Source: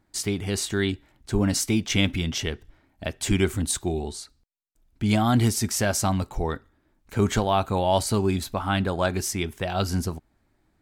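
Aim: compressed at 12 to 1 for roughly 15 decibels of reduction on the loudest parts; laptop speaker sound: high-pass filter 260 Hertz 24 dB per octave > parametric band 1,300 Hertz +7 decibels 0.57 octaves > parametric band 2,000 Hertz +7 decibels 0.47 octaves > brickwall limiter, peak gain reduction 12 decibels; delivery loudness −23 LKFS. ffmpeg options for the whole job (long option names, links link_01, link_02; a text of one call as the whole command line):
ffmpeg -i in.wav -af "acompressor=threshold=-32dB:ratio=12,highpass=frequency=260:width=0.5412,highpass=frequency=260:width=1.3066,equalizer=frequency=1300:width_type=o:width=0.57:gain=7,equalizer=frequency=2000:width_type=o:width=0.47:gain=7,volume=18dB,alimiter=limit=-12dB:level=0:latency=1" out.wav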